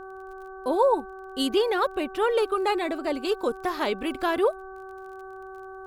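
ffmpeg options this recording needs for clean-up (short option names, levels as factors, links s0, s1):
-af "adeclick=t=4,bandreject=f=381.2:t=h:w=4,bandreject=f=762.4:t=h:w=4,bandreject=f=1143.6:t=h:w=4,bandreject=f=1524.8:t=h:w=4"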